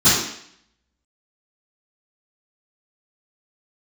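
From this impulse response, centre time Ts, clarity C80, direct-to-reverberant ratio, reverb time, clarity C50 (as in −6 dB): 62 ms, 4.5 dB, −19.5 dB, 0.65 s, 0.5 dB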